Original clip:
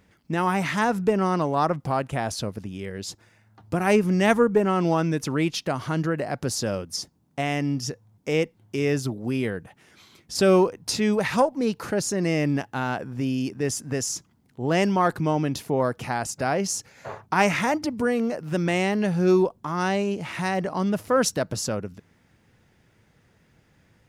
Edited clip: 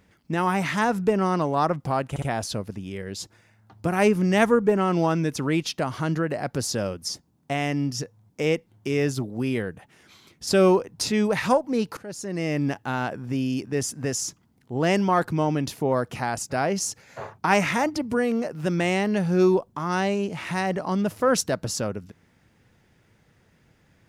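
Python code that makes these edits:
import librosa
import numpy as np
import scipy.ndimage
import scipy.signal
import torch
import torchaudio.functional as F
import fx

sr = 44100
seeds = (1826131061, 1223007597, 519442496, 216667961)

y = fx.edit(x, sr, fx.stutter(start_s=2.1, slice_s=0.06, count=3),
    fx.fade_in_from(start_s=11.85, length_s=0.75, floor_db=-18.5), tone=tone)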